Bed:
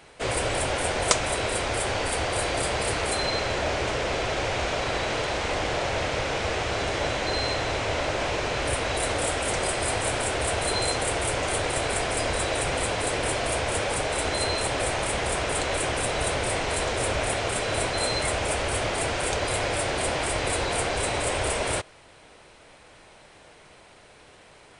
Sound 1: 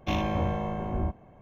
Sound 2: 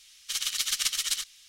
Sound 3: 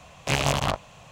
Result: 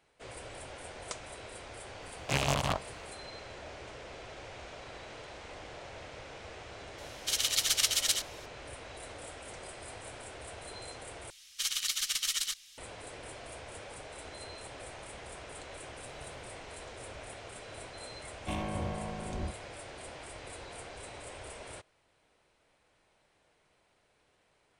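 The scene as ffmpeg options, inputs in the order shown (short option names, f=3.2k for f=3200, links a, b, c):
-filter_complex "[3:a]asplit=2[a][b];[2:a]asplit=2[c][d];[0:a]volume=-19.5dB[e];[d]alimiter=limit=-17.5dB:level=0:latency=1:release=64[f];[b]acompressor=threshold=-38dB:ratio=6:attack=3.2:release=140:knee=1:detection=peak[g];[e]asplit=2[h][i];[h]atrim=end=11.304[j];[f]atrim=end=1.48,asetpts=PTS-STARTPTS,volume=-1dB[k];[i]atrim=start=12.776[l];[a]atrim=end=1.11,asetpts=PTS-STARTPTS,volume=-6dB,afade=t=in:d=0.004:c=hsin,afade=t=out:st=1.106:d=0.004:c=hsin,adelay=2020[m];[c]atrim=end=1.48,asetpts=PTS-STARTPTS,afade=t=in:d=0.004:c=hsin,afade=t=out:st=1.476:d=0.004:c=hsin,adelay=307818S[n];[g]atrim=end=1.11,asetpts=PTS-STARTPTS,volume=-17dB,afade=t=in:d=0.004:c=hsin,afade=t=out:st=1.106:d=0.004:c=hsin,adelay=15760[o];[1:a]atrim=end=1.41,asetpts=PTS-STARTPTS,volume=-8dB,afade=t=in:d=0.004:c=hsin,afade=t=out:st=1.406:d=0.004:c=hsin,adelay=18400[p];[j][k]acrossfade=d=0.004:c1=hsin:c2=hsin[q];[q][l]acrossfade=d=0.004:c1=hsin:c2=hsin[r];[r][m][n][o][p]amix=inputs=5:normalize=0"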